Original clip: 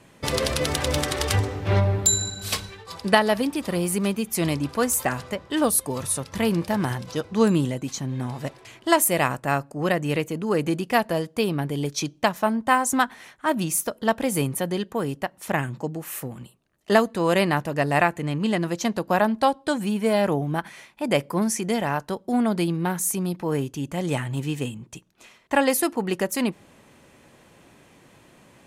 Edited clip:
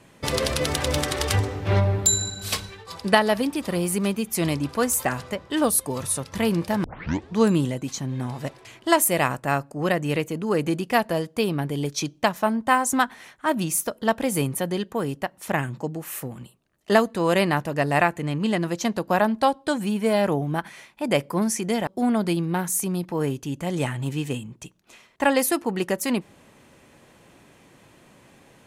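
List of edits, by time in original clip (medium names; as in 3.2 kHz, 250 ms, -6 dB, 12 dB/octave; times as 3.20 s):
6.84 s: tape start 0.52 s
21.87–22.18 s: delete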